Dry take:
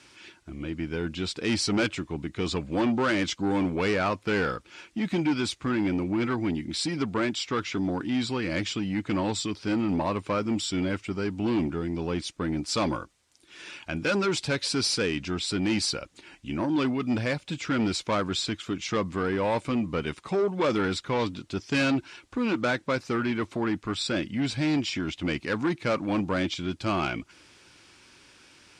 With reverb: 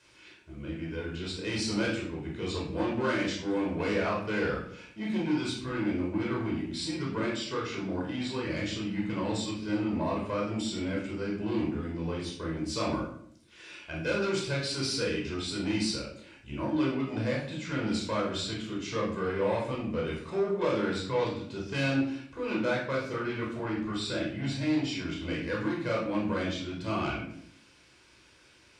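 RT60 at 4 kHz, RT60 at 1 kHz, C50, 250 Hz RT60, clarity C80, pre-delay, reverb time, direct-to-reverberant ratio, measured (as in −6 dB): 0.45 s, 0.60 s, 3.5 dB, 0.85 s, 8.0 dB, 15 ms, 0.65 s, −3.5 dB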